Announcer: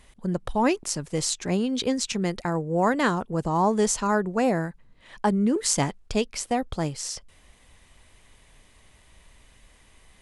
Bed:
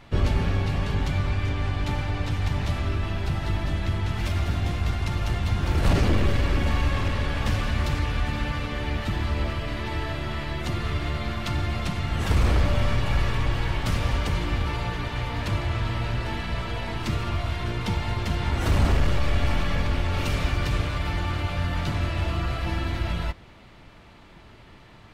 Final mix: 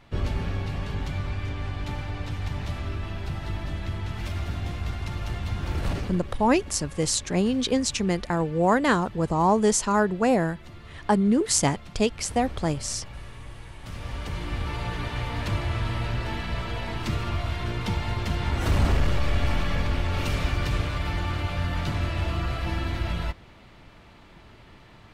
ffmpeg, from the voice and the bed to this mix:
ffmpeg -i stem1.wav -i stem2.wav -filter_complex "[0:a]adelay=5850,volume=1.5dB[link_01];[1:a]volume=11dB,afade=type=out:start_time=5.76:duration=0.46:silence=0.251189,afade=type=in:start_time=13.78:duration=1.26:silence=0.158489[link_02];[link_01][link_02]amix=inputs=2:normalize=0" out.wav

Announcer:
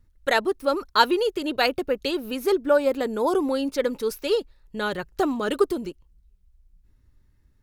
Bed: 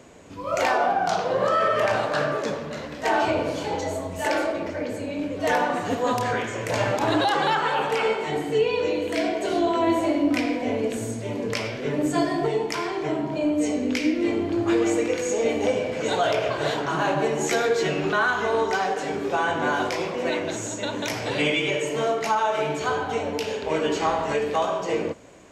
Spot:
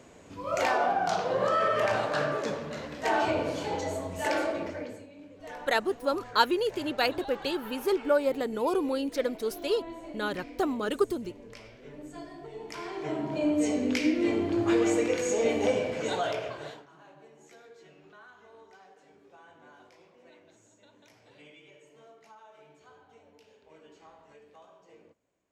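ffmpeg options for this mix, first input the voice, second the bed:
ffmpeg -i stem1.wav -i stem2.wav -filter_complex "[0:a]adelay=5400,volume=-5dB[link_01];[1:a]volume=13dB,afade=type=out:start_time=4.61:duration=0.47:silence=0.158489,afade=type=in:start_time=12.51:duration=1:silence=0.133352,afade=type=out:start_time=15.76:duration=1.11:silence=0.0398107[link_02];[link_01][link_02]amix=inputs=2:normalize=0" out.wav

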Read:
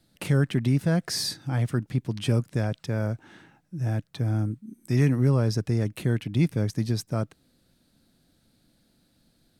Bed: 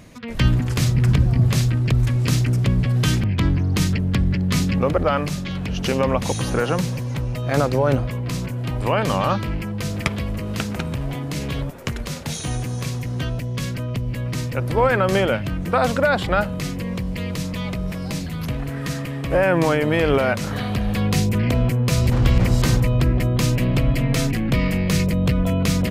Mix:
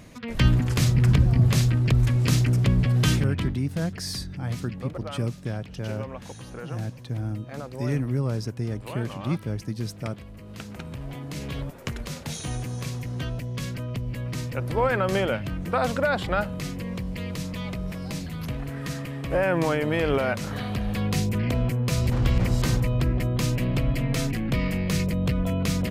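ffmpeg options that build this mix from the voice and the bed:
ffmpeg -i stem1.wav -i stem2.wav -filter_complex "[0:a]adelay=2900,volume=-4.5dB[link_01];[1:a]volume=10dB,afade=type=out:start_time=3.09:duration=0.5:silence=0.16788,afade=type=in:start_time=10.33:duration=1.43:silence=0.251189[link_02];[link_01][link_02]amix=inputs=2:normalize=0" out.wav

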